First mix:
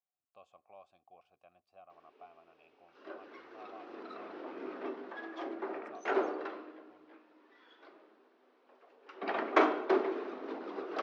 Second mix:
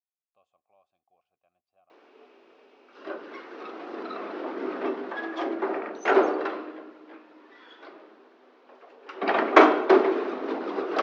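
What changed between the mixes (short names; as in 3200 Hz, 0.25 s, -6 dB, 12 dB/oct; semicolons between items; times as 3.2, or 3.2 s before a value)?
speech -10.0 dB; background +11.0 dB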